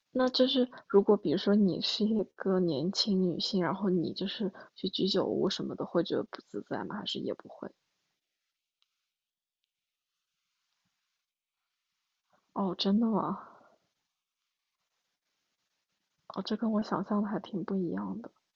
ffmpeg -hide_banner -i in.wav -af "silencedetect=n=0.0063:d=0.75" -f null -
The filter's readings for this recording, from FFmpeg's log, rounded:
silence_start: 7.67
silence_end: 12.56 | silence_duration: 4.88
silence_start: 13.48
silence_end: 16.30 | silence_duration: 2.82